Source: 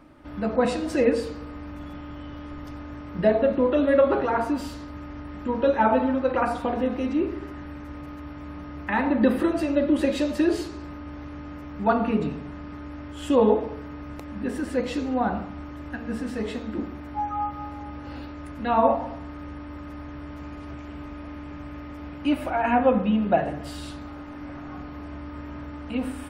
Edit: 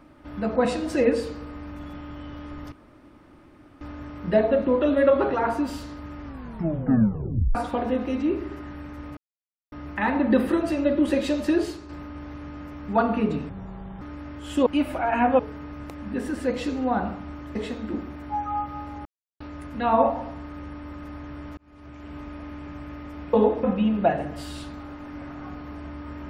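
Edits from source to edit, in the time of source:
2.72 insert room tone 1.09 s
5.14 tape stop 1.32 s
8.08–8.63 mute
10.45–10.8 fade out, to -6.5 dB
12.4–12.74 speed 65%
13.39–13.69 swap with 22.18–22.91
15.85–16.4 cut
17.9–18.25 mute
20.42–21.04 fade in

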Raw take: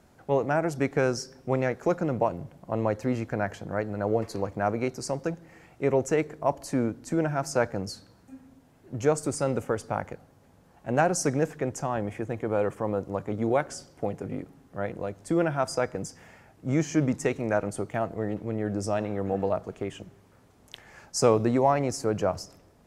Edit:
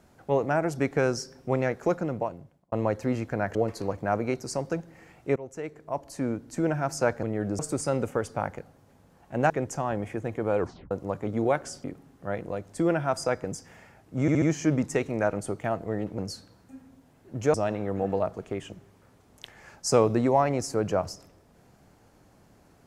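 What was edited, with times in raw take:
1.87–2.72 fade out
3.55–4.09 cut
5.9–7.23 fade in, from -19 dB
7.77–9.13 swap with 18.48–18.84
11.04–11.55 cut
12.64 tape stop 0.32 s
13.89–14.35 cut
16.72 stutter 0.07 s, 4 plays

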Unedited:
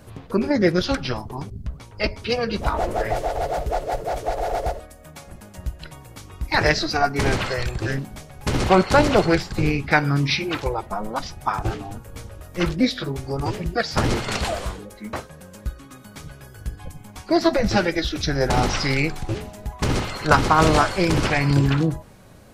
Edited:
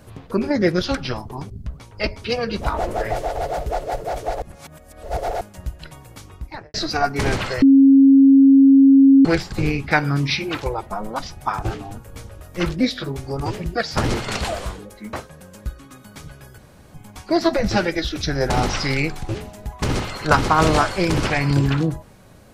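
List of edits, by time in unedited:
4.42–5.41 reverse
6.21–6.74 studio fade out
7.62–9.25 bleep 272 Hz -7 dBFS
16.58–16.94 room tone

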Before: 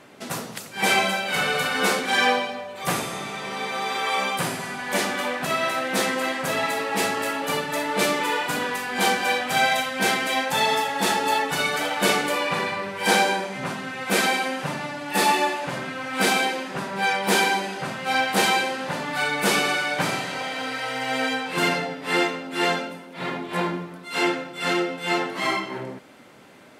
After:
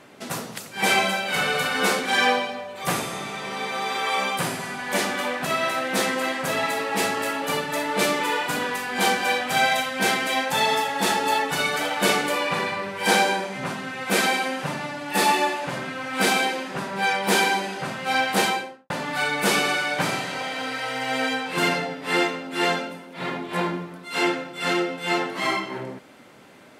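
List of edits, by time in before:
18.35–18.9 studio fade out

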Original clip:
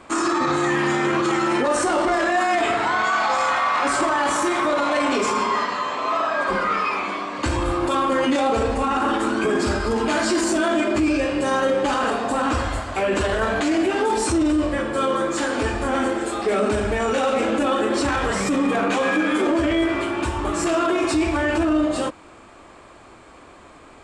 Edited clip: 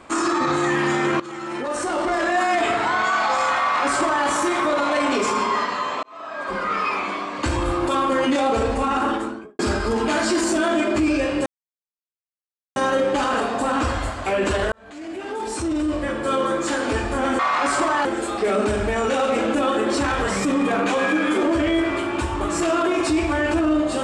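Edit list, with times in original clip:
1.2–2.4 fade in, from -16.5 dB
3.6–4.26 copy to 16.09
6.03–6.88 fade in
8.99–9.59 studio fade out
11.46 insert silence 1.30 s
13.42–15.04 fade in

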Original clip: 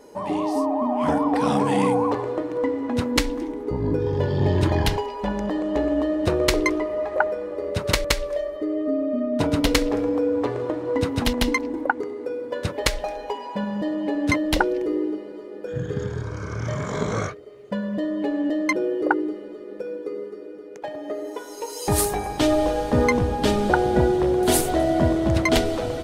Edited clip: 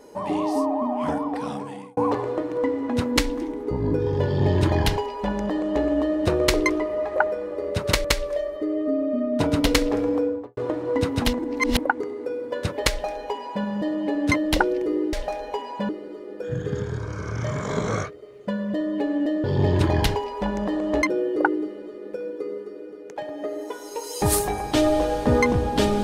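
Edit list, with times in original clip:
0.6–1.97 fade out
4.26–5.84 copy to 18.68
10.15–10.57 studio fade out
11.39–11.79 reverse
12.89–13.65 copy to 15.13

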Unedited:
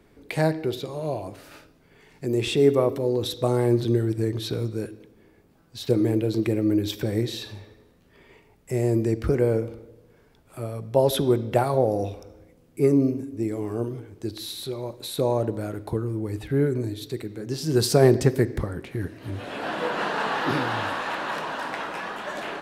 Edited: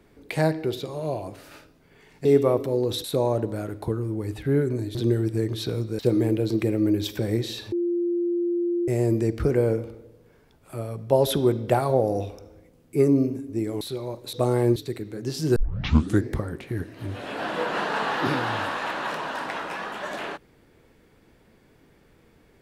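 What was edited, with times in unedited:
2.25–2.57 cut
3.36–3.79 swap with 15.09–17
4.83–5.83 cut
7.56–8.72 bleep 347 Hz -21.5 dBFS
13.65–14.57 cut
17.8 tape start 0.71 s

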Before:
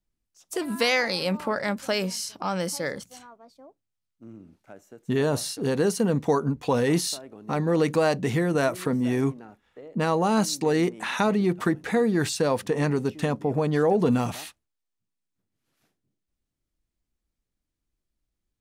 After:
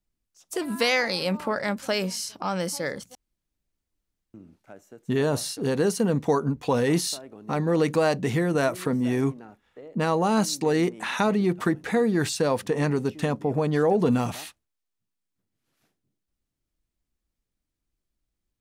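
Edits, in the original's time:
3.15–4.34 room tone

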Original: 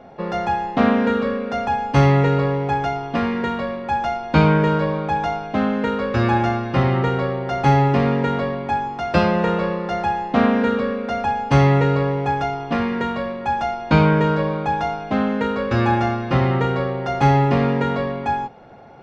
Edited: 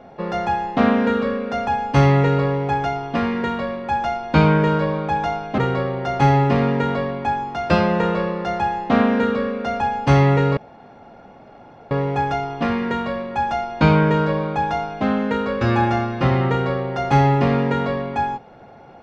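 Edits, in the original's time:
5.58–7.02 cut
12.01 insert room tone 1.34 s

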